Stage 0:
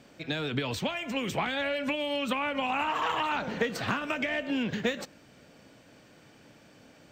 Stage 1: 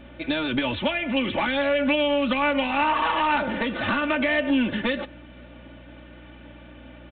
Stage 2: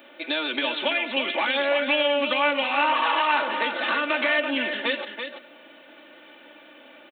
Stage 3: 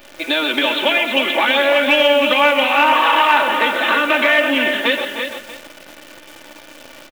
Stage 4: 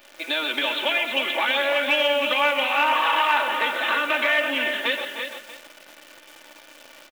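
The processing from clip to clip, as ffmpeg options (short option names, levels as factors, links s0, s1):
-af "aresample=8000,asoftclip=type=tanh:threshold=0.0531,aresample=44100,aecho=1:1:3.4:0.76,aeval=exprs='val(0)+0.00224*(sin(2*PI*60*n/s)+sin(2*PI*2*60*n/s)/2+sin(2*PI*3*60*n/s)/3+sin(2*PI*4*60*n/s)/4+sin(2*PI*5*60*n/s)/5)':c=same,volume=2.11"
-af "highpass=f=290:w=0.5412,highpass=f=290:w=1.3066,aemphasis=mode=production:type=bsi,aecho=1:1:334:0.422"
-af "acontrast=68,aecho=1:1:127|304:0.266|0.237,acrusher=bits=7:dc=4:mix=0:aa=0.000001,volume=1.26"
-af "lowshelf=f=320:g=-11.5,volume=0.501"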